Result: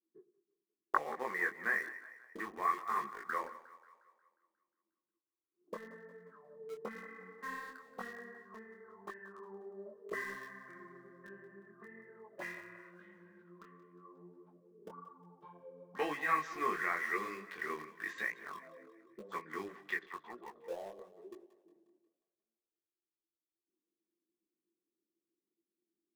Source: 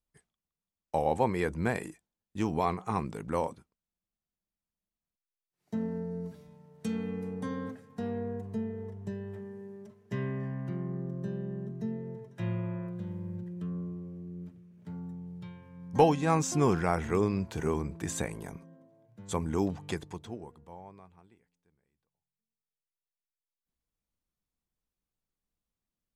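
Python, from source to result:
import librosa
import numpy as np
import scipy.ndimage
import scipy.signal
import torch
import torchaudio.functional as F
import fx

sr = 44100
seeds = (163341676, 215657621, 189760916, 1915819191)

p1 = scipy.signal.sosfilt(scipy.signal.butter(4, 81.0, 'highpass', fs=sr, output='sos'), x)
p2 = fx.auto_wah(p1, sr, base_hz=330.0, top_hz=1900.0, q=11.0, full_db=-34.0, direction='up')
p3 = fx.weighting(p2, sr, curve='ITU-R 468')
p4 = fx.filter_sweep_lowpass(p3, sr, from_hz=1500.0, to_hz=4400.0, start_s=11.5, end_s=13.24, q=1.5)
p5 = fx.tilt_shelf(p4, sr, db=8.5, hz=880.0)
p6 = fx.small_body(p5, sr, hz=(210.0, 350.0, 1100.0), ring_ms=25, db=17)
p7 = fx.quant_dither(p6, sr, seeds[0], bits=8, dither='none')
p8 = p6 + F.gain(torch.from_numpy(p7), -11.0).numpy()
p9 = fx.echo_split(p8, sr, split_hz=470.0, low_ms=106, high_ms=179, feedback_pct=52, wet_db=-16)
p10 = fx.detune_double(p9, sr, cents=34)
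y = F.gain(torch.from_numpy(p10), 9.5).numpy()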